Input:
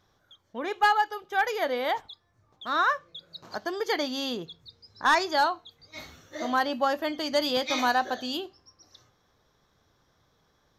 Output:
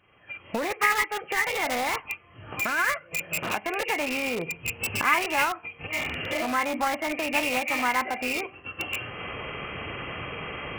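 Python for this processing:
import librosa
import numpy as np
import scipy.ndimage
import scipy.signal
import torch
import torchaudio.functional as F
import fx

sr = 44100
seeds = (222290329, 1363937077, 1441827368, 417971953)

p1 = fx.freq_compress(x, sr, knee_hz=1700.0, ratio=4.0)
p2 = fx.recorder_agc(p1, sr, target_db=-20.0, rise_db_per_s=42.0, max_gain_db=30)
p3 = fx.highpass(p2, sr, hz=85.0, slope=6)
p4 = (np.mod(10.0 ** (24.5 / 20.0) * p3 + 1.0, 2.0) - 1.0) / 10.0 ** (24.5 / 20.0)
p5 = p3 + (p4 * librosa.db_to_amplitude(-8.0))
p6 = fx.formant_shift(p5, sr, semitones=3)
y = p6 * librosa.db_to_amplitude(-1.0)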